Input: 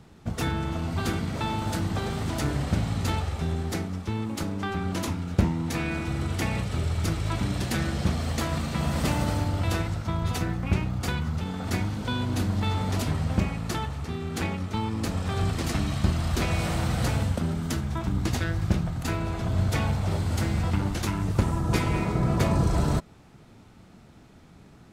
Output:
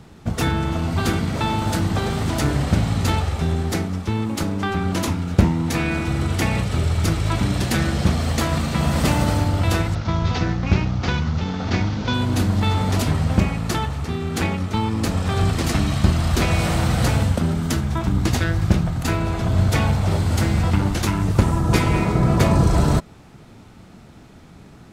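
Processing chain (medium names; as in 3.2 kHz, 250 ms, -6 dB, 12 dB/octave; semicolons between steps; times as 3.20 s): 9.95–12.14 s: CVSD coder 32 kbps; trim +7 dB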